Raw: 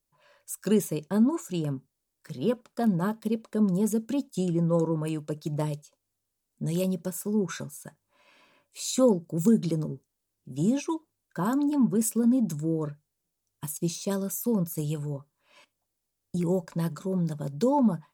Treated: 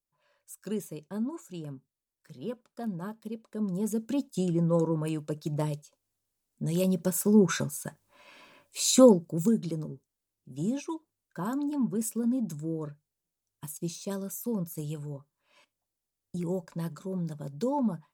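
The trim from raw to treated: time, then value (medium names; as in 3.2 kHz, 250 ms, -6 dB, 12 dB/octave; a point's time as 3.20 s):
3.43 s -10 dB
4.16 s -1 dB
6.71 s -1 dB
7.20 s +6 dB
8.95 s +6 dB
9.60 s -5.5 dB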